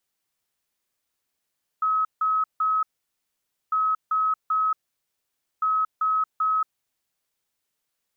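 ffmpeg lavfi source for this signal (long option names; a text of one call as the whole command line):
ffmpeg -f lavfi -i "aevalsrc='0.106*sin(2*PI*1280*t)*clip(min(mod(mod(t,1.9),0.39),0.23-mod(mod(t,1.9),0.39))/0.005,0,1)*lt(mod(t,1.9),1.17)':duration=5.7:sample_rate=44100" out.wav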